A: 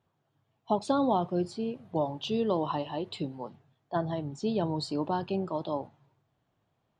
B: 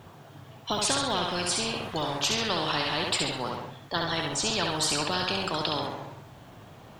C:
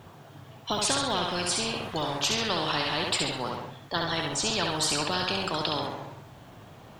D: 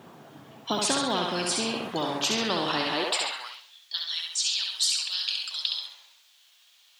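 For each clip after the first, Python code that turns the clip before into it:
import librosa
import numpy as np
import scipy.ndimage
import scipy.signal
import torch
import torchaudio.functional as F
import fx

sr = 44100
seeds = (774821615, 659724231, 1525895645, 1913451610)

y1 = fx.echo_thinned(x, sr, ms=67, feedback_pct=32, hz=350.0, wet_db=-5.5)
y1 = fx.spectral_comp(y1, sr, ratio=4.0)
y1 = y1 * librosa.db_to_amplitude(2.0)
y2 = y1
y3 = fx.filter_sweep_highpass(y2, sr, from_hz=220.0, to_hz=3700.0, start_s=2.9, end_s=3.63, q=1.6)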